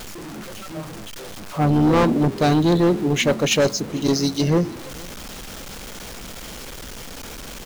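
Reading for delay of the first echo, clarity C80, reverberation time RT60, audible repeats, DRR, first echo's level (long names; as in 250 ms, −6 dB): 453 ms, no reverb audible, no reverb audible, 1, no reverb audible, −23.5 dB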